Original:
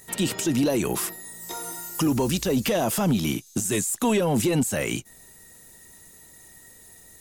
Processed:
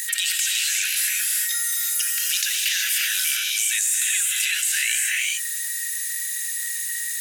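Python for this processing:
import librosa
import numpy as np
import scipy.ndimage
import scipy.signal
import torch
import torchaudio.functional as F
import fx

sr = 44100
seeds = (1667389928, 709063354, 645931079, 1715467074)

y = scipy.signal.sosfilt(scipy.signal.butter(16, 1500.0, 'highpass', fs=sr, output='sos'), x)
y = fx.rev_gated(y, sr, seeds[0], gate_ms=400, shape='rising', drr_db=-1.0)
y = fx.env_flatten(y, sr, amount_pct=70)
y = y * 10.0 ** (3.0 / 20.0)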